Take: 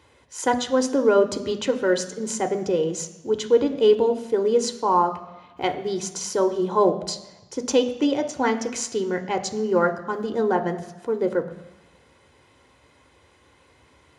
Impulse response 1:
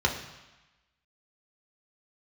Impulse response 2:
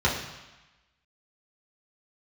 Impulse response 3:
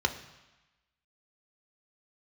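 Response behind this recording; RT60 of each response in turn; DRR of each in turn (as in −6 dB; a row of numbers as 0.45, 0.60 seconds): 3; 1.1, 1.1, 1.1 seconds; 0.5, −6.0, 6.0 decibels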